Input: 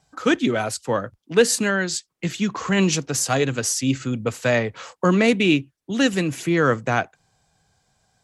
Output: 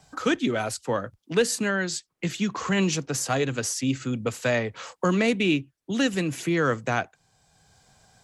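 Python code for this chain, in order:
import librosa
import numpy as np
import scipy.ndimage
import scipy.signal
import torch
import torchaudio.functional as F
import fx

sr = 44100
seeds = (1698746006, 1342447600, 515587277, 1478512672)

y = fx.band_squash(x, sr, depth_pct=40)
y = y * librosa.db_to_amplitude(-4.5)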